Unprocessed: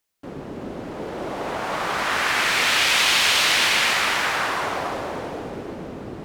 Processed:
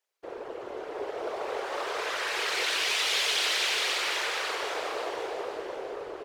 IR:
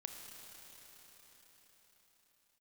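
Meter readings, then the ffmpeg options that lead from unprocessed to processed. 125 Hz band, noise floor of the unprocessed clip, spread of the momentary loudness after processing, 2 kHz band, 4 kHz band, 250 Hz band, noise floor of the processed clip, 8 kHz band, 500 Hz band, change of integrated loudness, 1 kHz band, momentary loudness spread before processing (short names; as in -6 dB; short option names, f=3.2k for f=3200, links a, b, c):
under -20 dB, -36 dBFS, 14 LU, -9.5 dB, -7.5 dB, -12.5 dB, -43 dBFS, -8.5 dB, -3.5 dB, -9.5 dB, -9.5 dB, 19 LU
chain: -filter_complex "[0:a]asplit=2[a][b];[b]highpass=f=720:p=1,volume=11dB,asoftclip=type=tanh:threshold=-4dB[c];[a][c]amix=inputs=2:normalize=0,lowpass=f=3.9k:p=1,volume=-6dB,acrossover=split=470|3000[d][e][f];[e]acompressor=threshold=-32dB:ratio=2[g];[d][g][f]amix=inputs=3:normalize=0,tremolo=f=220:d=0.621,afftfilt=real='hypot(re,im)*cos(2*PI*random(0))':imag='hypot(re,im)*sin(2*PI*random(1))':win_size=512:overlap=0.75,lowshelf=f=300:t=q:w=3:g=-11,asplit=2[h][i];[i]aecho=0:1:533|1066|1599|2132:0.398|0.131|0.0434|0.0143[j];[h][j]amix=inputs=2:normalize=0"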